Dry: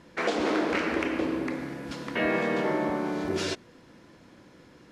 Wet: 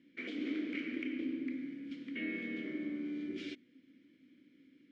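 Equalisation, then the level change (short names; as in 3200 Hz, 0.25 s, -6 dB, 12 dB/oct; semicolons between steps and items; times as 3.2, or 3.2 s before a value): vowel filter i; -1.0 dB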